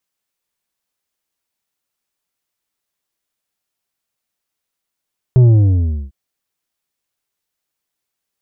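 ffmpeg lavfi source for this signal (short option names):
-f lavfi -i "aevalsrc='0.501*clip((0.75-t)/0.69,0,1)*tanh(2.24*sin(2*PI*130*0.75/log(65/130)*(exp(log(65/130)*t/0.75)-1)))/tanh(2.24)':d=0.75:s=44100"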